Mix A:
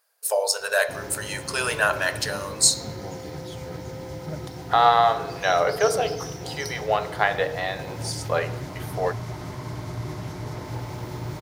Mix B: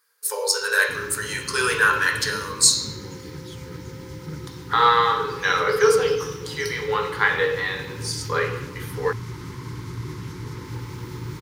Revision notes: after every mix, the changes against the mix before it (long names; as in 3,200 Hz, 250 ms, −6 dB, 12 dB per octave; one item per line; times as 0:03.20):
speech: send +11.5 dB
master: add Butterworth band-reject 670 Hz, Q 1.4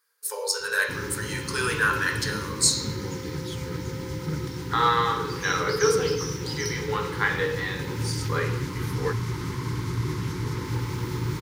speech −5.0 dB
background +4.5 dB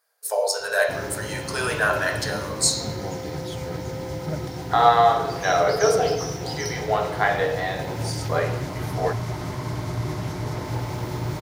master: remove Butterworth band-reject 670 Hz, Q 1.4